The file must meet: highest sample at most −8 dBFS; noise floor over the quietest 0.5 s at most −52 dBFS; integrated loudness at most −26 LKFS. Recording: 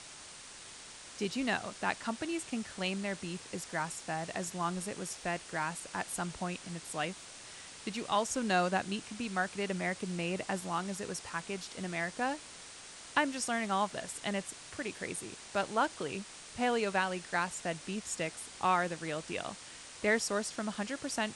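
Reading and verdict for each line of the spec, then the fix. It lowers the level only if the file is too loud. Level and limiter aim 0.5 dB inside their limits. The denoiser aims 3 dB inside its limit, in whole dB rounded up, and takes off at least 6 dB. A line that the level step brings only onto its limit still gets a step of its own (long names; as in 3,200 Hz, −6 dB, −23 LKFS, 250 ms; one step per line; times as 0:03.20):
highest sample −15.5 dBFS: in spec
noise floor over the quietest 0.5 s −50 dBFS: out of spec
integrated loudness −35.5 LKFS: in spec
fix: broadband denoise 6 dB, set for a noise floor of −50 dBFS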